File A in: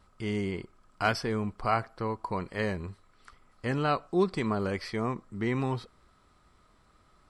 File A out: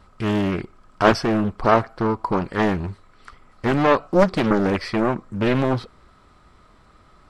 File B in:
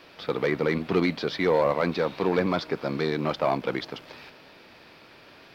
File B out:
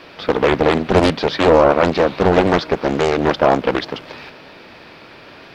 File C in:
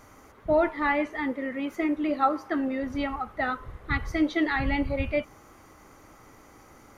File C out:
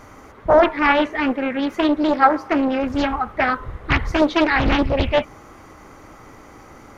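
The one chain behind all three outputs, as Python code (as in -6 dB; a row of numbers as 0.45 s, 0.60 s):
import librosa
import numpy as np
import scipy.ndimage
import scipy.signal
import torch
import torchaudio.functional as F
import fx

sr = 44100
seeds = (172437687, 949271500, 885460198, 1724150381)

y = fx.high_shelf(x, sr, hz=5800.0, db=-7.5)
y = fx.doppler_dist(y, sr, depth_ms=0.99)
y = y * 10.0 ** (-1.5 / 20.0) / np.max(np.abs(y))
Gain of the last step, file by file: +10.5 dB, +11.0 dB, +9.5 dB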